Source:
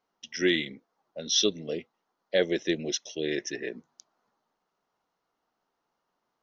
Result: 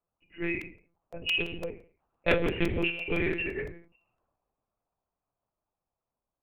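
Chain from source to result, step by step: nonlinear frequency compression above 2200 Hz 4:1; Doppler pass-by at 2.75, 11 m/s, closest 6.7 m; low-pass opened by the level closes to 1000 Hz, open at -24 dBFS; soft clip -27 dBFS, distortion -9 dB; non-linear reverb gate 0.24 s falling, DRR 7 dB; monotone LPC vocoder at 8 kHz 170 Hz; crackling interface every 0.17 s, samples 128, repeat, from 0.61; ending taper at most 140 dB/s; gain +6 dB

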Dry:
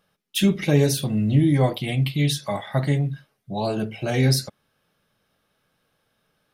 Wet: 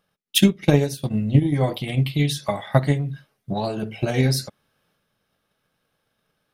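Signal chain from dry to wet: transient shaper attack +11 dB, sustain -10 dB, from 1.53 s sustain +4 dB; gain -3.5 dB

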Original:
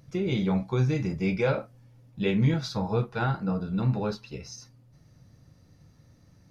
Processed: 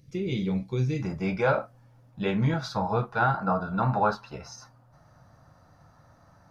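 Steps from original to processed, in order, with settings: band shelf 990 Hz -9 dB, from 1.01 s +9 dB, from 3.36 s +16 dB; gain -2 dB

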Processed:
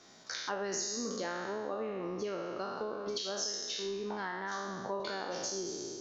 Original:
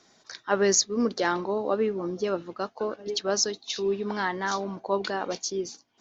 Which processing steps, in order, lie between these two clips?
spectral trails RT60 1.21 s; compressor 6:1, threshold -35 dBFS, peak gain reduction 19 dB; 3.18–5 three-band expander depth 40%

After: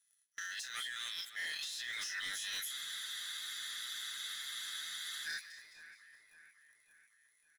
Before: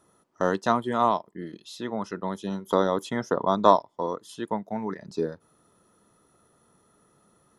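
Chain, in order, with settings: spectral dilation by 60 ms; steep high-pass 1600 Hz 72 dB/oct; gate -54 dBFS, range -22 dB; high shelf 4000 Hz +8 dB; comb 6.6 ms, depth 85%; negative-ratio compressor -45 dBFS, ratio -1; sample leveller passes 3; limiter -36 dBFS, peak gain reduction 11 dB; split-band echo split 2400 Hz, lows 0.558 s, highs 0.209 s, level -14 dB; spectral freeze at 2.75, 2.51 s; gain +1 dB

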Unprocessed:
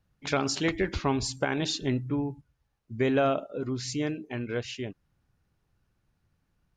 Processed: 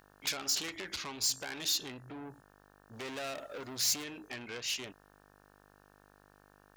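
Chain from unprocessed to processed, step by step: compressor 16:1, threshold -30 dBFS, peak gain reduction 10.5 dB; soft clip -34.5 dBFS, distortion -10 dB; 2.93–4.04 sample leveller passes 1; buzz 50 Hz, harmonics 36, -55 dBFS -5 dB/oct; tilt +4 dB/oct

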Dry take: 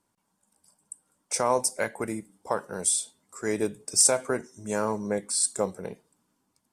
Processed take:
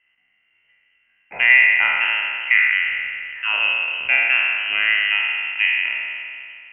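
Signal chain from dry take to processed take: spectral trails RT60 2.37 s; thirty-one-band EQ 100 Hz +12 dB, 160 Hz -5 dB, 250 Hz +11 dB, 1000 Hz +12 dB; inverted band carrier 3000 Hz; gain +3 dB

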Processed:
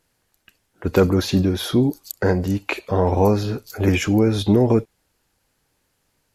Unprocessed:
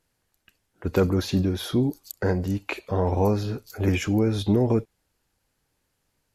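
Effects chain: low shelf 140 Hz -3.5 dB; gain +6 dB

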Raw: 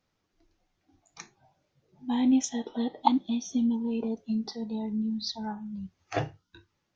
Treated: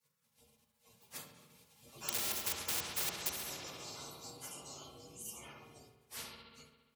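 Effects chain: inharmonic rescaling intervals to 122%; Doppler pass-by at 2.75, 11 m/s, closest 2.1 m; in parallel at -3.5 dB: wrapped overs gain 32.5 dB; on the sum: HPF 610 Hz 6 dB/oct; band shelf 1400 Hz -15 dB 1.2 oct; comb 2.9 ms, depth 75%; spectral gate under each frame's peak -20 dB weak; analogue delay 68 ms, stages 2048, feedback 72%, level -13 dB; on a send at -1 dB: reverb RT60 0.30 s, pre-delay 3 ms; on the sum: spectral compressor 4:1; gain +14.5 dB

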